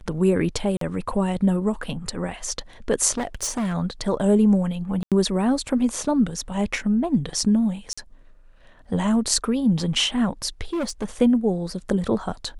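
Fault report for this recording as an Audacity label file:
0.770000	0.810000	drop-out 43 ms
3.170000	3.750000	clipping −21.5 dBFS
5.030000	5.120000	drop-out 87 ms
7.930000	7.970000	drop-out 45 ms
10.730000	11.050000	clipping −22 dBFS

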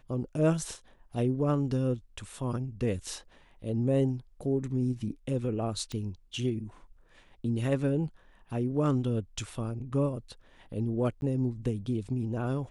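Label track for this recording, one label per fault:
5.920000	5.920000	click −24 dBFS
11.210000	11.220000	drop-out 11 ms

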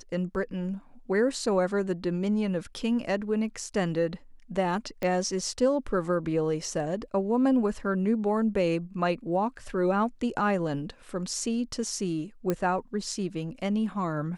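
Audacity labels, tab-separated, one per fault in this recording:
5.030000	5.030000	click −18 dBFS
12.500000	12.500000	click −14 dBFS

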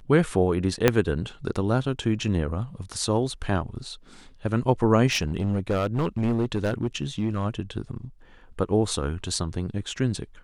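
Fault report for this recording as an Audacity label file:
0.880000	0.880000	click −3 dBFS
5.060000	7.450000	clipping −19.5 dBFS

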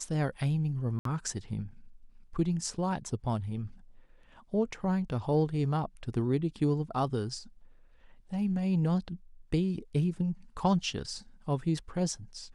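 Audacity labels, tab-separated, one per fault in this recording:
0.990000	1.050000	drop-out 63 ms

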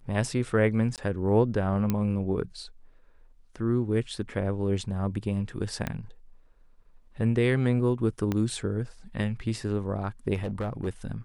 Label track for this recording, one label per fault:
0.960000	0.980000	drop-out 18 ms
1.900000	1.900000	click −13 dBFS
5.870000	5.870000	click −16 dBFS
8.320000	8.320000	click −15 dBFS
10.340000	10.880000	clipping −26 dBFS

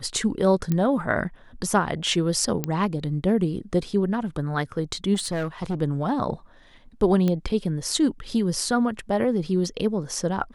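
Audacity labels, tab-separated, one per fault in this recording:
0.720000	0.720000	click −12 dBFS
2.640000	2.640000	click −10 dBFS
5.140000	5.810000	clipping −22.5 dBFS
7.280000	7.280000	click −13 dBFS

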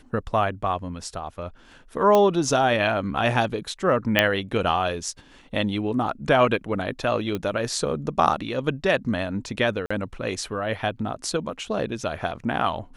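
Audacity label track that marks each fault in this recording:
2.150000	2.150000	click −7 dBFS
4.190000	4.190000	click −4 dBFS
7.350000	7.350000	click −15 dBFS
9.860000	9.900000	drop-out 45 ms

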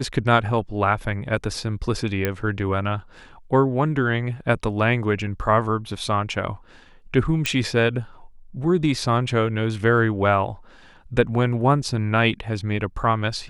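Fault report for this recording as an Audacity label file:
2.250000	2.250000	click −8 dBFS
7.460000	7.460000	click −7 dBFS

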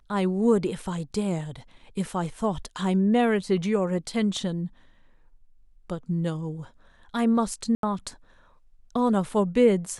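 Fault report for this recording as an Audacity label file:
7.750000	7.830000	drop-out 82 ms

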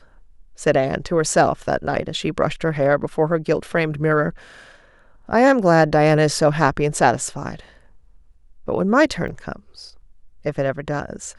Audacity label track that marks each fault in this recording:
9.280000	9.280000	drop-out 2.4 ms

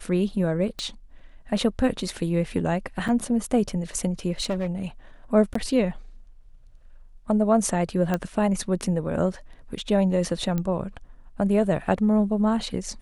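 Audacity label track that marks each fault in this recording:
0.790000	0.790000	click −20 dBFS
3.080000	3.090000	drop-out 6.1 ms
4.400000	4.820000	clipping −20.5 dBFS
5.540000	5.550000	drop-out 14 ms
8.140000	8.140000	click −12 dBFS
10.580000	10.580000	click −15 dBFS

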